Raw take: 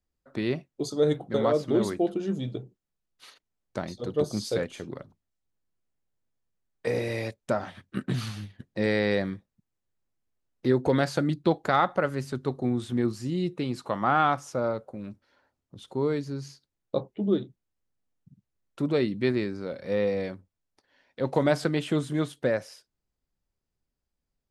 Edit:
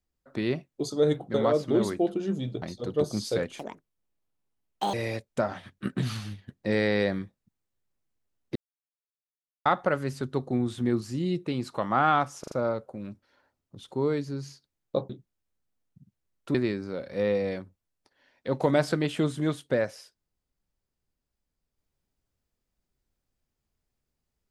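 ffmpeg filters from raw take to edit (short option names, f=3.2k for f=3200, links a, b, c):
-filter_complex "[0:a]asplit=11[a][b][c][d][e][f][g][h][i][j][k];[a]atrim=end=2.622[l];[b]atrim=start=3.818:end=4.794[m];[c]atrim=start=4.79:end=7.05,asetpts=PTS-STARTPTS,asetrate=74088,aresample=44100[n];[d]atrim=start=7.046:end=10.67,asetpts=PTS-STARTPTS,afade=t=out:st=3.62:d=0.004:c=hsin[o];[e]atrim=start=10.67:end=11.77,asetpts=PTS-STARTPTS,volume=0[p];[f]atrim=start=11.77:end=14.552,asetpts=PTS-STARTPTS,afade=t=in:d=0.004:c=hsin[q];[g]atrim=start=14.508:end=14.552[r];[h]atrim=start=14.508:end=14.552[s];[i]atrim=start=14.508:end=17.092[t];[j]atrim=start=17.398:end=18.852[u];[k]atrim=start=19.268[v];[l][m]acrossfade=d=0.004:c1=hsin:c2=hsin[w];[w][n]acrossfade=d=0.004:c1=hsin:c2=hsin[x];[o][p][q]concat=n=3:v=0:a=1[y];[x][y]acrossfade=d=0.004:c1=hsin:c2=hsin[z];[z][r]acrossfade=d=0.004:c1=hsin:c2=hsin[aa];[aa][s]acrossfade=d=0.004:c1=hsin:c2=hsin[ab];[ab][t]acrossfade=d=0.004:c1=hsin:c2=hsin[ac];[ac][u]acrossfade=d=0.004:c1=hsin:c2=hsin[ad];[ad][v]acrossfade=d=0.004:c1=hsin:c2=hsin"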